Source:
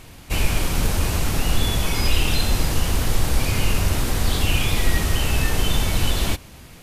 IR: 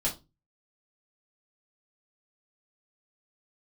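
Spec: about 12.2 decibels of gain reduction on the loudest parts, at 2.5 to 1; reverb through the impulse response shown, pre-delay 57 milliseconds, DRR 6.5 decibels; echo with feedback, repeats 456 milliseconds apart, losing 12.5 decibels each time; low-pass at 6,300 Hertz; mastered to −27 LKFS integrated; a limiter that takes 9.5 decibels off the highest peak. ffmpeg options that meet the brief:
-filter_complex "[0:a]lowpass=6300,acompressor=threshold=-32dB:ratio=2.5,alimiter=level_in=3.5dB:limit=-24dB:level=0:latency=1,volume=-3.5dB,aecho=1:1:456|912|1368:0.237|0.0569|0.0137,asplit=2[link_01][link_02];[1:a]atrim=start_sample=2205,adelay=57[link_03];[link_02][link_03]afir=irnorm=-1:irlink=0,volume=-12.5dB[link_04];[link_01][link_04]amix=inputs=2:normalize=0,volume=10dB"

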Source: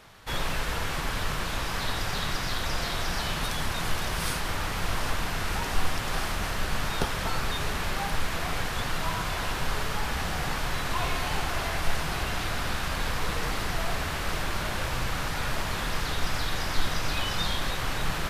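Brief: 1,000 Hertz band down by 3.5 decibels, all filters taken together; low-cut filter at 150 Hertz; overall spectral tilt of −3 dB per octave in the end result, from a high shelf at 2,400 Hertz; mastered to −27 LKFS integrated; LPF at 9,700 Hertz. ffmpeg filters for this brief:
ffmpeg -i in.wav -af "highpass=150,lowpass=9700,equalizer=frequency=1000:width_type=o:gain=-6,highshelf=frequency=2400:gain=7,volume=2dB" out.wav

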